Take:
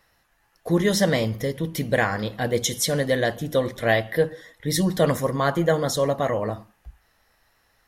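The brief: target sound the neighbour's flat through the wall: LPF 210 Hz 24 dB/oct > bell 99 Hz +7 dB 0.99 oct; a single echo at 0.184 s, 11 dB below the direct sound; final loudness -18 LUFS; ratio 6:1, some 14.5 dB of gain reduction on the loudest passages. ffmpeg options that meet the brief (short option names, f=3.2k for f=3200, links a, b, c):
-af "acompressor=threshold=-31dB:ratio=6,lowpass=f=210:w=0.5412,lowpass=f=210:w=1.3066,equalizer=f=99:t=o:w=0.99:g=7,aecho=1:1:184:0.282,volume=20.5dB"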